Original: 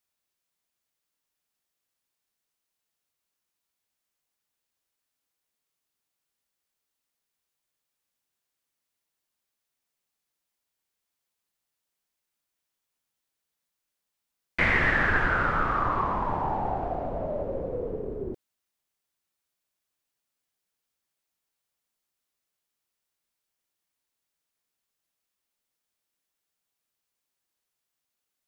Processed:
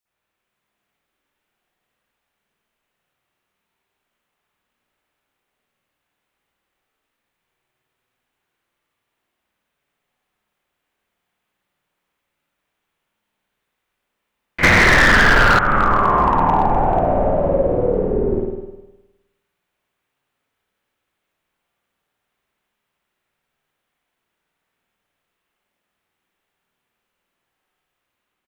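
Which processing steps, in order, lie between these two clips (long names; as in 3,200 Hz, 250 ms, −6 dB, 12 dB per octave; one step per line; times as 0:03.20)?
automatic gain control gain up to 3 dB
repeating echo 99 ms, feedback 54%, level −13.5 dB
convolution reverb RT60 1.0 s, pre-delay 52 ms, DRR −14 dB
0:14.63–0:15.59: leveller curve on the samples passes 3
downward compressor 6 to 1, threshold −8 dBFS, peak gain reduction 10.5 dB
hard clipping −4 dBFS, distortion −30 dB
level −3 dB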